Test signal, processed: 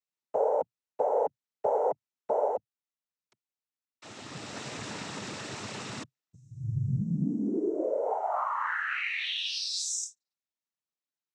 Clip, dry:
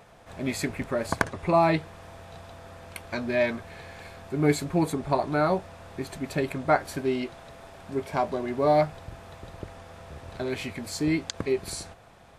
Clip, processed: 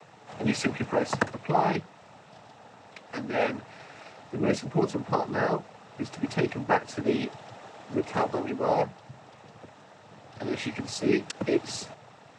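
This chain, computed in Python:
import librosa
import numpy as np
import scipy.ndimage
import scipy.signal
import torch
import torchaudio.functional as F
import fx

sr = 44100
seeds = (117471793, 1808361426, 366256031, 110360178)

y = (np.kron(scipy.signal.resample_poly(x, 1, 3), np.eye(3)[0]) * 3)[:len(x)]
y = fx.noise_vocoder(y, sr, seeds[0], bands=12)
y = fx.rider(y, sr, range_db=4, speed_s=0.5)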